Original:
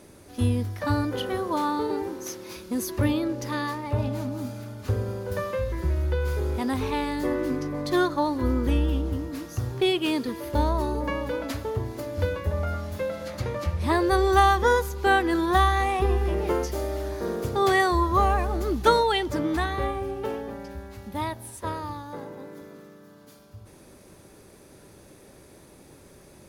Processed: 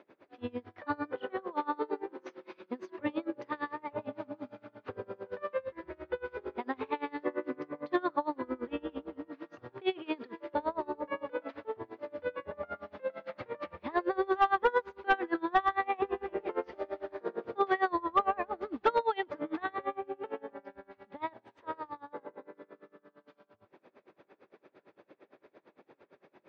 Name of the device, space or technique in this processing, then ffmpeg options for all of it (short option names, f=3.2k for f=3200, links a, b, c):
helicopter radio: -af "highpass=360,lowpass=2.9k,lowpass=7.2k,aeval=exprs='val(0)*pow(10,-27*(0.5-0.5*cos(2*PI*8.8*n/s))/20)':c=same,asoftclip=type=hard:threshold=-18dB,lowpass=3.3k"